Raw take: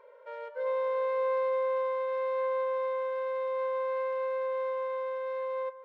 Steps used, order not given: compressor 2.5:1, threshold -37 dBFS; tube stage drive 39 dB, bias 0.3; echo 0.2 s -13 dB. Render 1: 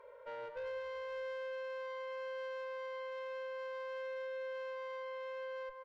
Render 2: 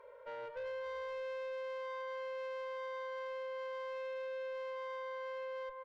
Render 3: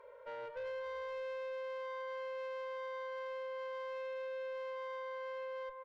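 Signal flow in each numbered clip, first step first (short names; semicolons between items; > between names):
compressor > tube stage > echo; echo > compressor > tube stage; compressor > echo > tube stage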